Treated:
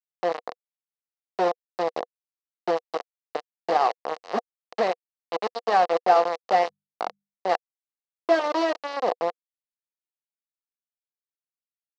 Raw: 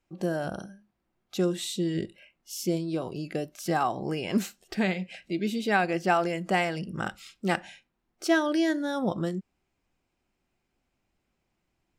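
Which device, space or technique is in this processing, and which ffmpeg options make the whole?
hand-held game console: -filter_complex "[0:a]acrusher=bits=3:mix=0:aa=0.000001,highpass=430,equalizer=frequency=490:width_type=q:width=4:gain=10,equalizer=frequency=720:width_type=q:width=4:gain=9,equalizer=frequency=1100:width_type=q:width=4:gain=4,equalizer=frequency=1500:width_type=q:width=4:gain=-6,equalizer=frequency=2400:width_type=q:width=4:gain=-8,equalizer=frequency=3400:width_type=q:width=4:gain=-9,lowpass=frequency=4300:width=0.5412,lowpass=frequency=4300:width=1.3066,asettb=1/sr,asplit=3[link_01][link_02][link_03];[link_01]atrim=end=6.434[link_04];[link_02]atrim=start=6.43:end=7.47,asetpts=PTS-STARTPTS,afade=type=in:duration=0.004:curve=qsin,afade=type=out:start_time=1.036:duration=0.004:curve=qsin,bandreject=frequency=50:width_type=h:width=6,bandreject=frequency=100:width_type=h:width=6,bandreject=frequency=150:width_type=h:width=6,bandreject=frequency=200:width_type=h:width=6[link_05];[link_03]atrim=start=7.466[link_06];[link_04][link_05]acrossfade=duration=0.004:curve1=hsin:curve2=qsin[link_07];[link_07][link_06]acrossfade=duration=0.004:curve1=qsin:curve2=hsin"

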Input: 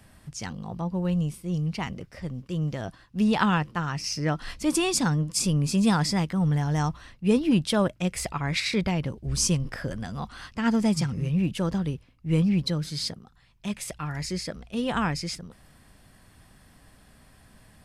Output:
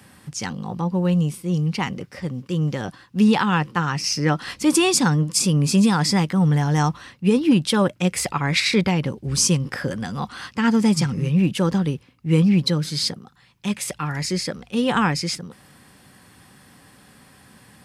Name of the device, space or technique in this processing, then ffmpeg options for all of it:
PA system with an anti-feedback notch: -af "highpass=130,asuperstop=centerf=650:order=4:qfactor=7,alimiter=limit=-15.5dB:level=0:latency=1:release=239,volume=7.5dB"

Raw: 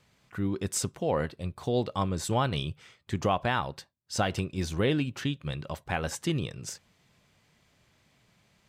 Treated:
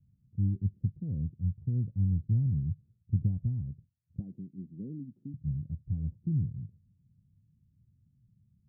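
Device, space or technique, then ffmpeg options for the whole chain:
the neighbour's flat through the wall: -filter_complex "[0:a]asettb=1/sr,asplit=3[link_01][link_02][link_03];[link_01]atrim=end=4.194[link_04];[link_02]atrim=start=4.19:end=5.34,asetpts=PTS-STARTPTS,afade=type=in:duration=0.004:curve=qsin,afade=type=out:start_time=1.146:duration=0.004:curve=qsin,highpass=frequency=220:width=0.5412,highpass=frequency=220:width=1.3066[link_05];[link_03]atrim=start=5.336[link_06];[link_04][link_05]acrossfade=duration=0.004:curve1=hsin:curve2=qsin[link_07];[link_07][link_06]acrossfade=duration=0.004:curve1=qsin:curve2=hsin,lowpass=frequency=200:width=0.5412,lowpass=frequency=200:width=1.3066,equalizer=frequency=100:width_type=o:width=0.91:gain=7"

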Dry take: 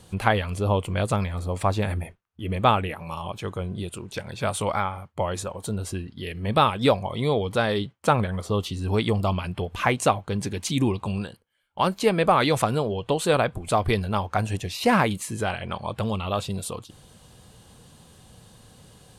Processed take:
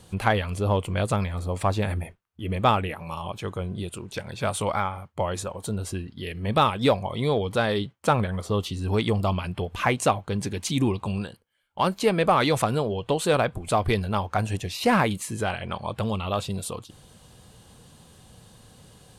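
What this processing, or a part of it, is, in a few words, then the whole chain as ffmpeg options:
parallel distortion: -filter_complex "[0:a]asplit=2[link_01][link_02];[link_02]asoftclip=type=hard:threshold=-16dB,volume=-9dB[link_03];[link_01][link_03]amix=inputs=2:normalize=0,volume=-3dB"

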